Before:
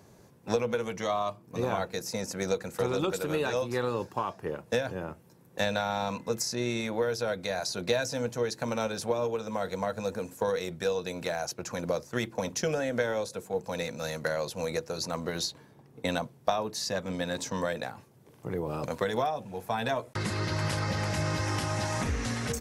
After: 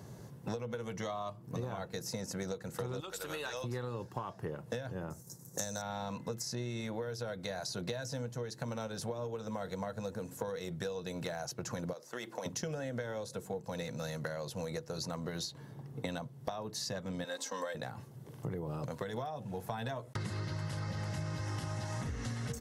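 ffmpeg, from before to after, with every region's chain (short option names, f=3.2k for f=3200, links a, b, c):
-filter_complex "[0:a]asettb=1/sr,asplit=3[a][b][c];[a]atrim=end=3.004[d];[b]atrim=start=3:end=3.64,asetpts=PTS-STARTPTS,afade=t=in:d=0.004:c=qsin,afade=t=out:st=0.636:d=0.004:c=qsin,highpass=f=1.5k:p=1,aeval=exprs='val(0)+0.000794*(sin(2*PI*50*n/s)+sin(2*PI*2*50*n/s)/2+sin(2*PI*3*50*n/s)/3+sin(2*PI*4*50*n/s)/4+sin(2*PI*5*50*n/s)/5)':c=same[e];[c]atrim=start=3.636[f];[d][e]acrossfade=d=0.004:c1=hsin:c2=qsin[g];[g][f]acrossfade=d=0.004:c1=qsin:c2=hsin,asettb=1/sr,asplit=3[h][i][j];[h]atrim=end=5.104[k];[i]atrim=start=5.1:end=5.82,asetpts=PTS-STARTPTS,afade=t=in:d=0.004:c=qsin,afade=t=out:st=0.716:d=0.004:c=qsin,agate=range=-33dB:threshold=-55dB:ratio=3:release=100:detection=peak,highshelf=f=4.4k:t=q:w=3:g=14[l];[j]atrim=start=5.816[m];[k][l]acrossfade=d=0.004:c1=hsin:c2=qsin[n];[n][m]acrossfade=d=0.004:c1=qsin:c2=hsin,asettb=1/sr,asplit=3[o][p][q];[o]atrim=end=11.934[r];[p]atrim=start=11.93:end=12.46,asetpts=PTS-STARTPTS,afade=t=in:d=0.004:c=qsin,afade=t=out:st=0.526:d=0.004:c=qsin,highpass=380,acompressor=threshold=-38dB:ratio=2:attack=3.2:release=140:knee=1:detection=peak[s];[q]atrim=start=12.456[t];[r][s]acrossfade=d=0.004:c1=hsin:c2=qsin[u];[u][t]acrossfade=d=0.004:c1=qsin:c2=hsin,asettb=1/sr,asplit=3[v][w][x];[v]atrim=end=17.244[y];[w]atrim=start=17.24:end=17.75,asetpts=PTS-STARTPTS,afade=t=in:d=0.004:c=qsin,afade=t=out:st=0.506:d=0.004:c=qsin,highpass=490,aecho=1:1:3.8:0.69,atrim=end_sample=22491[z];[x]atrim=start=17.746[aa];[y][z]acrossfade=d=0.004:c1=hsin:c2=qsin[ab];[ab][aa]acrossfade=d=0.004:c1=qsin:c2=hsin,equalizer=f=130:w=1.7:g=9.5,bandreject=f=2.4k:w=9.5,acompressor=threshold=-39dB:ratio=6,volume=2.5dB"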